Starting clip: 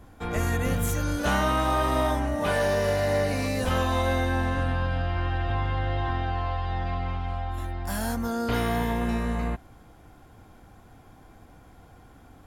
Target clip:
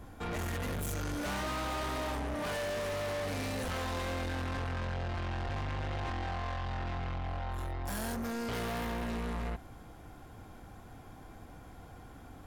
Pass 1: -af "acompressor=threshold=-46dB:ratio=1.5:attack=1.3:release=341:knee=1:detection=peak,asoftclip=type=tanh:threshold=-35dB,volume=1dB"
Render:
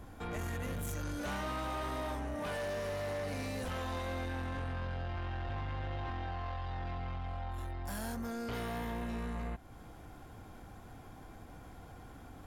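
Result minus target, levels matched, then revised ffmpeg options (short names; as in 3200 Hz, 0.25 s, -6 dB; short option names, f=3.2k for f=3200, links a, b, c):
compressor: peak gain reduction +10.5 dB
-af "asoftclip=type=tanh:threshold=-35dB,volume=1dB"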